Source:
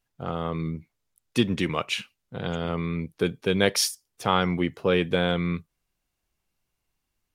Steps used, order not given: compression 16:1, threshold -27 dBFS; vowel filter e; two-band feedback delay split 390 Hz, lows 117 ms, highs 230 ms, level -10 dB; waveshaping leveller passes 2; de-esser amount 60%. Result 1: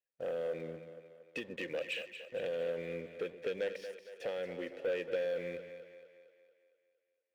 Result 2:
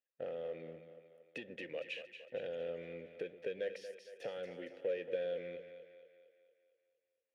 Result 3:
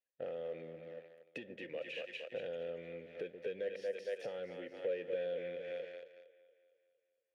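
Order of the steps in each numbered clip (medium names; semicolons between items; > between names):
de-esser > compression > vowel filter > waveshaping leveller > two-band feedback delay; waveshaping leveller > compression > two-band feedback delay > de-esser > vowel filter; two-band feedback delay > waveshaping leveller > de-esser > compression > vowel filter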